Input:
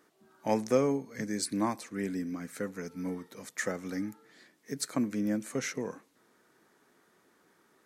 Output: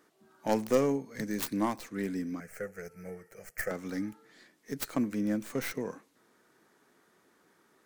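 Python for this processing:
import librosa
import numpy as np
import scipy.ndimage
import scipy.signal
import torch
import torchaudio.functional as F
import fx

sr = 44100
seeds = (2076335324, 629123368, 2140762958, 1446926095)

y = fx.tracing_dist(x, sr, depth_ms=0.43)
y = fx.fixed_phaser(y, sr, hz=1000.0, stages=6, at=(2.4, 3.71))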